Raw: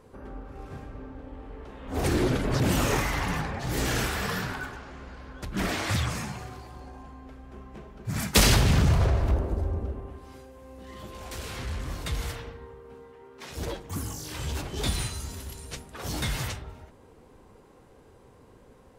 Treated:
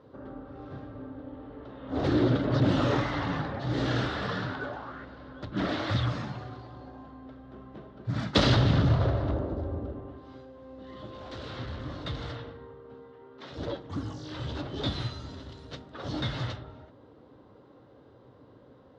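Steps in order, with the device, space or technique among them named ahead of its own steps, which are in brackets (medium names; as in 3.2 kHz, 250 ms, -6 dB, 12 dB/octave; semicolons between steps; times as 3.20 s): guitar cabinet (cabinet simulation 80–4400 Hz, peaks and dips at 120 Hz +8 dB, 290 Hz +9 dB, 580 Hz +7 dB, 1.3 kHz +4 dB, 2.4 kHz -8 dB, 3.7 kHz +5 dB); 4.60–5.04 s: peaking EQ 420 Hz -> 1.9 kHz +13 dB 0.58 oct; trim -3.5 dB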